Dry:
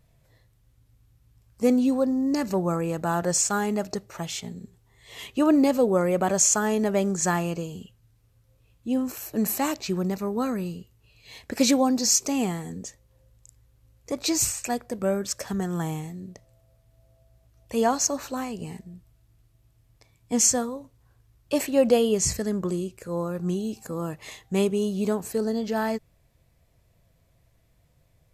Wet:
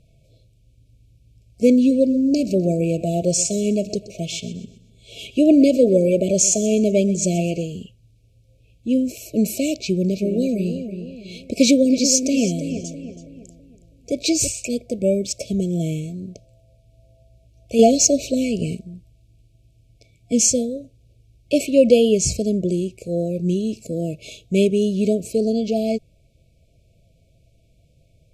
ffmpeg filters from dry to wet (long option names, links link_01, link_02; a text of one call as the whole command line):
ffmpeg -i in.wav -filter_complex "[0:a]asplit=3[link_01][link_02][link_03];[link_01]afade=type=out:start_time=1.89:duration=0.02[link_04];[link_02]aecho=1:1:126|252|378|504:0.158|0.0634|0.0254|0.0101,afade=type=in:start_time=1.89:duration=0.02,afade=type=out:start_time=7.63:duration=0.02[link_05];[link_03]afade=type=in:start_time=7.63:duration=0.02[link_06];[link_04][link_05][link_06]amix=inputs=3:normalize=0,asplit=3[link_07][link_08][link_09];[link_07]afade=type=out:start_time=10.07:duration=0.02[link_10];[link_08]asplit=2[link_11][link_12];[link_12]adelay=327,lowpass=frequency=2900:poles=1,volume=-8.5dB,asplit=2[link_13][link_14];[link_14]adelay=327,lowpass=frequency=2900:poles=1,volume=0.41,asplit=2[link_15][link_16];[link_16]adelay=327,lowpass=frequency=2900:poles=1,volume=0.41,asplit=2[link_17][link_18];[link_18]adelay=327,lowpass=frequency=2900:poles=1,volume=0.41,asplit=2[link_19][link_20];[link_20]adelay=327,lowpass=frequency=2900:poles=1,volume=0.41[link_21];[link_11][link_13][link_15][link_17][link_19][link_21]amix=inputs=6:normalize=0,afade=type=in:start_time=10.07:duration=0.02,afade=type=out:start_time=14.47:duration=0.02[link_22];[link_09]afade=type=in:start_time=14.47:duration=0.02[link_23];[link_10][link_22][link_23]amix=inputs=3:normalize=0,asettb=1/sr,asplit=3[link_24][link_25][link_26];[link_24]atrim=end=17.794[link_27];[link_25]atrim=start=17.79:end=18.75,asetpts=PTS-STARTPTS,afade=type=in:duration=0.004:curve=qsin,afade=type=out:start_time=0.956:duration=0.004:curve=qsin,acontrast=36[link_28];[link_26]atrim=start=18.746[link_29];[link_27][link_28]acrossfade=duration=0.004:curve1=hsin:curve2=qsin[link_30];[link_30][link_29]acrossfade=duration=0.004:curve1=qsin:curve2=hsin,lowpass=9500,afftfilt=real='re*(1-between(b*sr/4096,690,2200))':imag='im*(1-between(b*sr/4096,690,2200))':win_size=4096:overlap=0.75,highshelf=frequency=5100:gain=-4,volume=6.5dB" out.wav